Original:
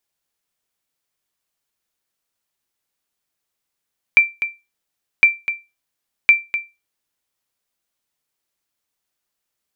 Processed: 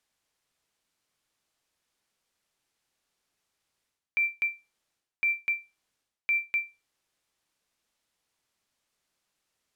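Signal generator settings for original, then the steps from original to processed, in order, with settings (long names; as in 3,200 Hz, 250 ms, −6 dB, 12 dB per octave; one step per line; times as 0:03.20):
ping with an echo 2,350 Hz, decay 0.24 s, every 1.06 s, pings 3, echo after 0.25 s, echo −11.5 dB −2 dBFS
reversed playback
downward compressor 16 to 1, threshold −25 dBFS
reversed playback
linearly interpolated sample-rate reduction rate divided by 2×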